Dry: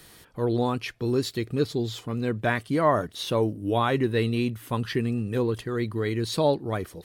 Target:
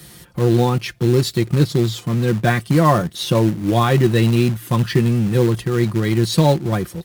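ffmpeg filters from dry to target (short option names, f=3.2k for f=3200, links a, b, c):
-filter_complex "[0:a]highpass=f=50:w=0.5412,highpass=f=50:w=1.3066,bass=f=250:g=10,treble=f=4k:g=4,aecho=1:1:5.7:0.57,asplit=2[a][b];[b]acrusher=bits=2:mode=log:mix=0:aa=0.000001,volume=-4dB[c];[a][c]amix=inputs=2:normalize=0"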